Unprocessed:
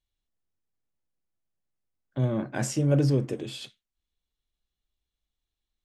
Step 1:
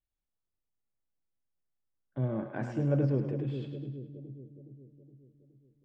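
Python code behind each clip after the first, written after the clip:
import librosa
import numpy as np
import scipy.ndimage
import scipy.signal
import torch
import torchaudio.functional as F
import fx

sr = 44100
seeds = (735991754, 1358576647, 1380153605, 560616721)

y = scipy.signal.sosfilt(scipy.signal.butter(2, 1800.0, 'lowpass', fs=sr, output='sos'), x)
y = fx.echo_split(y, sr, split_hz=440.0, low_ms=418, high_ms=104, feedback_pct=52, wet_db=-7.0)
y = y * 10.0 ** (-5.5 / 20.0)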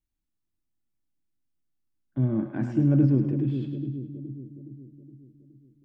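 y = fx.low_shelf_res(x, sr, hz=380.0, db=6.0, q=3.0)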